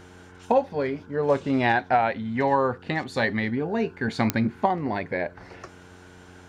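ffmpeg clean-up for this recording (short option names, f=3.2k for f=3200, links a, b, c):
-af "adeclick=t=4,bandreject=f=90.2:t=h:w=4,bandreject=f=180.4:t=h:w=4,bandreject=f=270.6:t=h:w=4,bandreject=f=360.8:t=h:w=4,bandreject=f=451:t=h:w=4"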